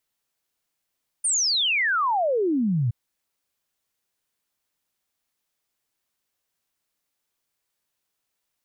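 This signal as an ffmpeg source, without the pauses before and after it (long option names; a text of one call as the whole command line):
ffmpeg -f lavfi -i "aevalsrc='0.106*clip(min(t,1.67-t)/0.01,0,1)*sin(2*PI*9400*1.67/log(110/9400)*(exp(log(110/9400)*t/1.67)-1))':duration=1.67:sample_rate=44100" out.wav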